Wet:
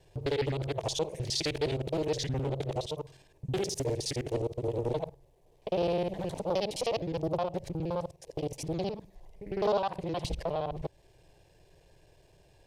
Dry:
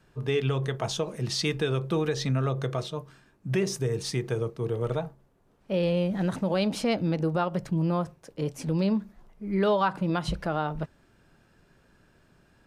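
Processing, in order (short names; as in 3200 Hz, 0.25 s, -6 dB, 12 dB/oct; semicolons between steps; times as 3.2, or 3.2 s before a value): local time reversal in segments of 52 ms; in parallel at +2.5 dB: compressor, threshold -37 dBFS, peak gain reduction 16 dB; on the sum: fixed phaser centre 560 Hz, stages 4; Doppler distortion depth 0.68 ms; gain -3 dB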